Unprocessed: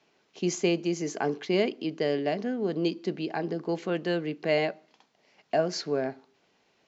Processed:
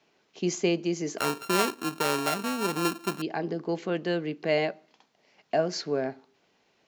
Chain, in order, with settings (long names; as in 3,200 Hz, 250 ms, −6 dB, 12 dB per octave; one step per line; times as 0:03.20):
0:01.18–0:03.22: samples sorted by size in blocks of 32 samples